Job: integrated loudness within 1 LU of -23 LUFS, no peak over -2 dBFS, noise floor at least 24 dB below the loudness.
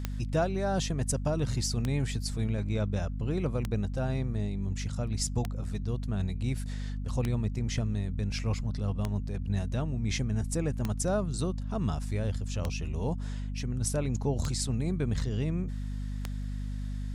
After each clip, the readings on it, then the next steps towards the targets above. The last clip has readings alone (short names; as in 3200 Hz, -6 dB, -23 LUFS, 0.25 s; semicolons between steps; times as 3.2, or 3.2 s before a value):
clicks 10; hum 50 Hz; harmonics up to 250 Hz; hum level -32 dBFS; loudness -32.0 LUFS; peak -14.5 dBFS; loudness target -23.0 LUFS
-> de-click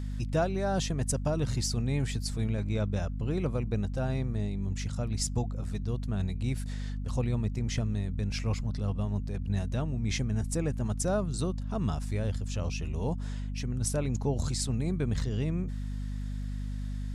clicks 0; hum 50 Hz; harmonics up to 250 Hz; hum level -32 dBFS
-> notches 50/100/150/200/250 Hz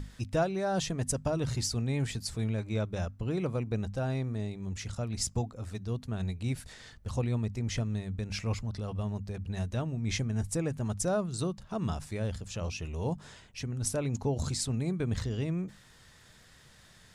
hum none; loudness -33.5 LUFS; peak -17.5 dBFS; loudness target -23.0 LUFS
-> gain +10.5 dB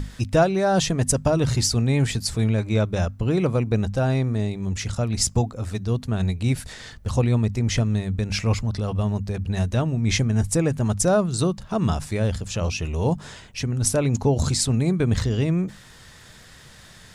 loudness -23.0 LUFS; peak -7.0 dBFS; noise floor -47 dBFS